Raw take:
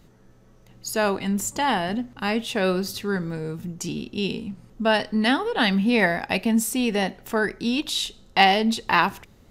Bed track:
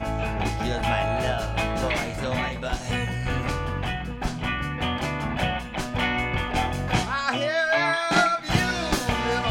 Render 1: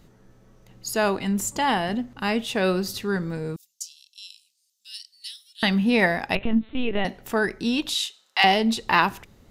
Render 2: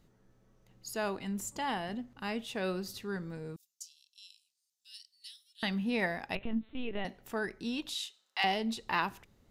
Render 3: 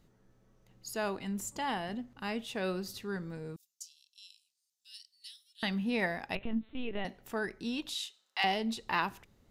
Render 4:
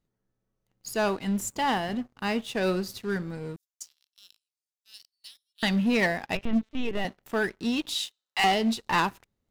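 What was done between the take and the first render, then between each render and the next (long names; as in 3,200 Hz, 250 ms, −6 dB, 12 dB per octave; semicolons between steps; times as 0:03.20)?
0:03.56–0:05.63: inverse Chebyshev high-pass filter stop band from 1,000 Hz, stop band 70 dB; 0:06.35–0:07.05: linear-prediction vocoder at 8 kHz pitch kept; 0:07.94–0:08.44: high-pass filter 1,200 Hz
level −12 dB
no processing that can be heard
leveller curve on the samples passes 3; expander for the loud parts 1.5 to 1, over −37 dBFS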